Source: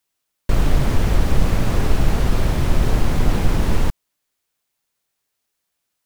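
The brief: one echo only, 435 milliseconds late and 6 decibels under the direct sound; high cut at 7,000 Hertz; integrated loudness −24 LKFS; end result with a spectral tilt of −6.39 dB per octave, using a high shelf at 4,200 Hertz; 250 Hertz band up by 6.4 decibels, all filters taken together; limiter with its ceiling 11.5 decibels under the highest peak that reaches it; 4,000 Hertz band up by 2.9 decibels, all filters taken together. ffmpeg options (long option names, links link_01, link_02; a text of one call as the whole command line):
ffmpeg -i in.wav -af "lowpass=7000,equalizer=frequency=250:width_type=o:gain=8.5,equalizer=frequency=4000:width_type=o:gain=8.5,highshelf=frequency=4200:gain=-8,alimiter=limit=-12.5dB:level=0:latency=1,aecho=1:1:435:0.501,volume=-0.5dB" out.wav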